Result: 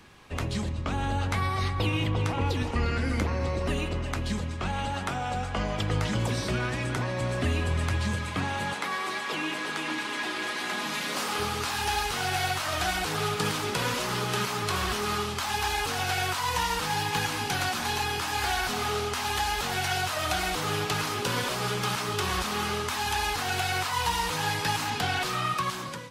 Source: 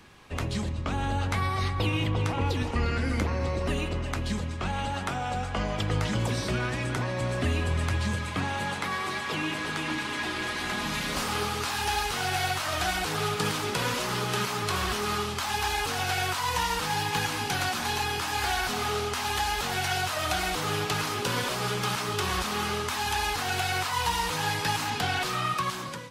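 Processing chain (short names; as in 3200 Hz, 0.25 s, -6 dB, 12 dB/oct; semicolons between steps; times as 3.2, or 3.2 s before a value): 8.73–11.39 HPF 240 Hz 12 dB/oct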